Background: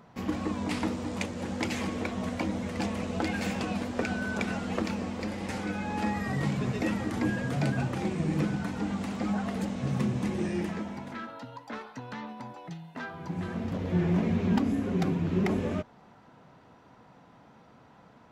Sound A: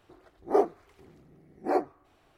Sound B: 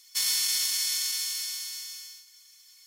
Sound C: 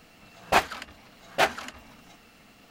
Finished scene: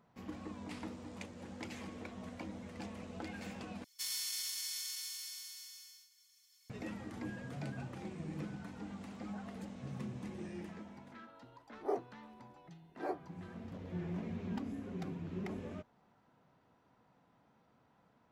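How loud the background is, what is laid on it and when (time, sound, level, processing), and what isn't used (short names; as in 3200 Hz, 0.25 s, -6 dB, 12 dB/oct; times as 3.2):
background -14.5 dB
3.84 replace with B -13 dB
11.34 add A -13 dB
not used: C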